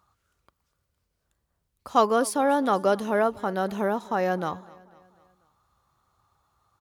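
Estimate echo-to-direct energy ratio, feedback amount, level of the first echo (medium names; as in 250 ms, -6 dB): -20.5 dB, 51%, -22.0 dB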